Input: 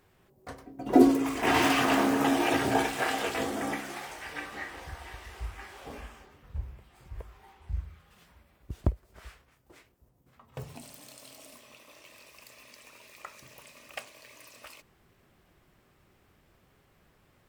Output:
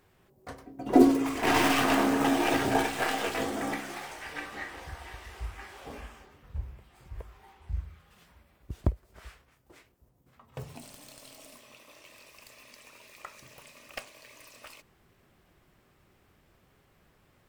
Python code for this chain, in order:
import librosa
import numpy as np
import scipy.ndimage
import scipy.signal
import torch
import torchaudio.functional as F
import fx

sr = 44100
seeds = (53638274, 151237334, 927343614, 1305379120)

y = fx.tracing_dist(x, sr, depth_ms=0.097)